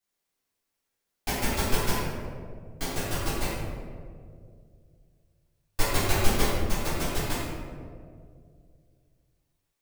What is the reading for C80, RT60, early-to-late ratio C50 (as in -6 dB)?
0.5 dB, 2.2 s, -1.5 dB